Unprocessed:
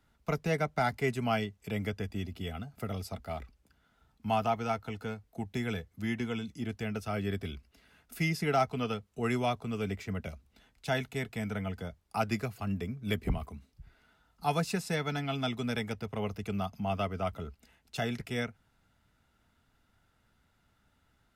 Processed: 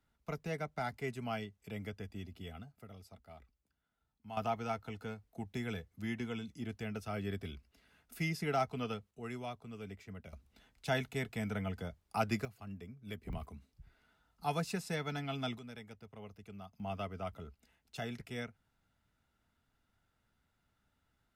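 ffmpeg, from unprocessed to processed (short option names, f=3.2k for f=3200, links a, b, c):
-af "asetnsamples=n=441:p=0,asendcmd='2.72 volume volume -16.5dB;4.37 volume volume -5.5dB;9.11 volume volume -12.5dB;10.33 volume volume -2.5dB;12.45 volume volume -13dB;13.33 volume volume -5.5dB;15.59 volume volume -16dB;16.8 volume volume -8dB',volume=-9dB"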